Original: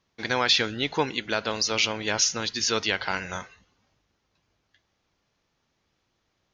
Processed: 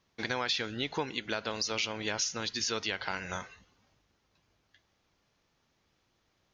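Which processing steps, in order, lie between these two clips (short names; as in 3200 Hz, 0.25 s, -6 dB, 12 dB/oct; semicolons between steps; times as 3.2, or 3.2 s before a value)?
compressor 2.5:1, threshold -33 dBFS, peak gain reduction 11 dB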